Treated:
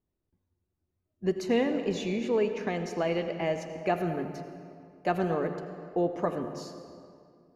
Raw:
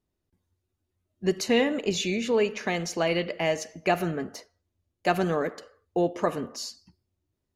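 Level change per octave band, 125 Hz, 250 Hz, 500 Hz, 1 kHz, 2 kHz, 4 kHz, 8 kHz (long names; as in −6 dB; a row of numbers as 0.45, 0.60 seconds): −2.0, −2.0, −2.5, −3.0, −7.0, −10.0, −12.5 decibels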